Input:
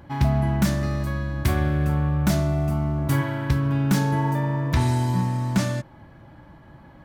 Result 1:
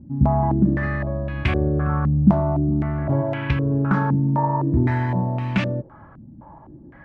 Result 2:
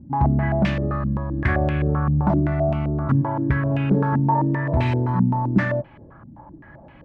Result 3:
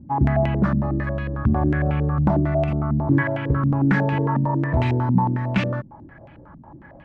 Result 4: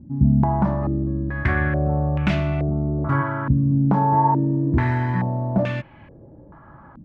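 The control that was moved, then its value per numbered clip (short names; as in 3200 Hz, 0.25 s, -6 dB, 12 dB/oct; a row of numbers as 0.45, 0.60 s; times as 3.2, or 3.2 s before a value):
stepped low-pass, rate: 3.9, 7.7, 11, 2.3 Hz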